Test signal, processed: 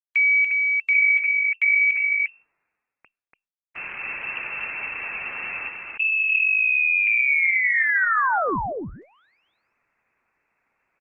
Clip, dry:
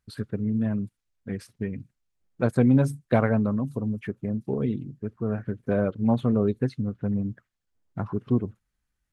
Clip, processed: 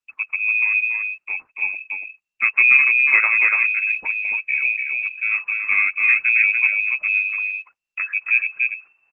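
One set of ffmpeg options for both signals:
ffmpeg -i in.wav -af "lowpass=frequency=2300:width_type=q:width=0.5098,lowpass=frequency=2300:width_type=q:width=0.6013,lowpass=frequency=2300:width_type=q:width=0.9,lowpass=frequency=2300:width_type=q:width=2.563,afreqshift=-2700,agate=range=-21dB:threshold=-45dB:ratio=16:detection=peak,areverse,acompressor=mode=upward:threshold=-44dB:ratio=2.5,areverse,equalizer=frequency=600:width_type=o:width=0.93:gain=-3.5,aecho=1:1:288:0.668,volume=5dB" -ar 48000 -c:a libopus -b:a 16k out.opus

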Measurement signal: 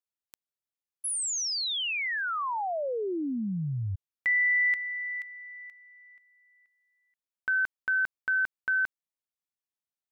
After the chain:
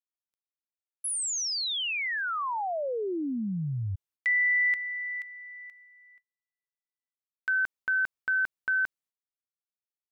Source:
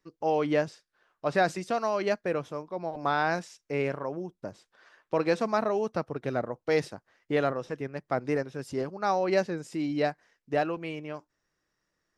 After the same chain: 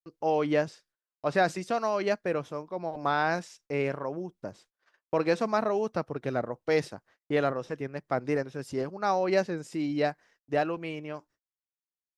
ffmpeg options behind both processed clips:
ffmpeg -i in.wav -af "agate=range=-34dB:threshold=-55dB:ratio=16:release=303:detection=peak" out.wav

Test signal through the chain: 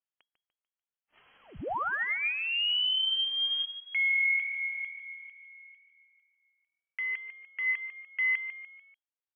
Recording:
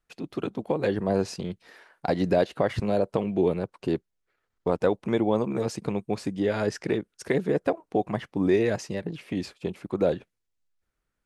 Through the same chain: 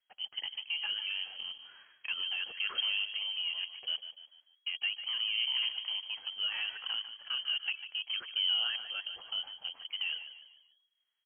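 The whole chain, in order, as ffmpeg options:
ffmpeg -i in.wav -filter_complex "[0:a]alimiter=limit=-18.5dB:level=0:latency=1:release=12,aresample=16000,acrusher=bits=6:mode=log:mix=0:aa=0.000001,aresample=44100,aphaser=in_gain=1:out_gain=1:delay=3.6:decay=0.35:speed=0.36:type=sinusoidal,asplit=5[link_01][link_02][link_03][link_04][link_05];[link_02]adelay=147,afreqshift=-40,volume=-11dB[link_06];[link_03]adelay=294,afreqshift=-80,volume=-18.3dB[link_07];[link_04]adelay=441,afreqshift=-120,volume=-25.7dB[link_08];[link_05]adelay=588,afreqshift=-160,volume=-33dB[link_09];[link_01][link_06][link_07][link_08][link_09]amix=inputs=5:normalize=0,lowpass=frequency=2800:width_type=q:width=0.5098,lowpass=frequency=2800:width_type=q:width=0.6013,lowpass=frequency=2800:width_type=q:width=0.9,lowpass=frequency=2800:width_type=q:width=2.563,afreqshift=-3300,volume=-8dB" out.wav

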